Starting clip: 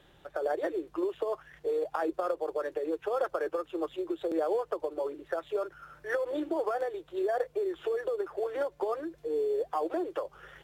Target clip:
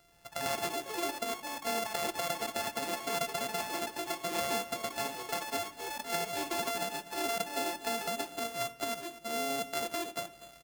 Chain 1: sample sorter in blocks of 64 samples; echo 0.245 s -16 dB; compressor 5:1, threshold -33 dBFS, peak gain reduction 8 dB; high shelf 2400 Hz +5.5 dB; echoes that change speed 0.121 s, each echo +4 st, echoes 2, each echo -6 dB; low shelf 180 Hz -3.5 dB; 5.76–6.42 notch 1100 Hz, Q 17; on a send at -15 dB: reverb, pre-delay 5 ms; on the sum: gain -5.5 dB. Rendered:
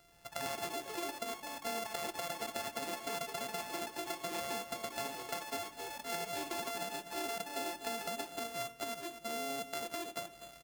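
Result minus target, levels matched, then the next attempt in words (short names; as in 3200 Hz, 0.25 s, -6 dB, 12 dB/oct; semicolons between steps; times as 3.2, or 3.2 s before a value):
compressor: peak gain reduction +8 dB
sample sorter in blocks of 64 samples; high shelf 2400 Hz +5.5 dB; echo 0.245 s -16 dB; echoes that change speed 0.121 s, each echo +4 st, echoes 2, each echo -6 dB; low shelf 180 Hz -3.5 dB; 5.76–6.42 notch 1100 Hz, Q 17; on a send at -15 dB: reverb, pre-delay 5 ms; on the sum: gain -5.5 dB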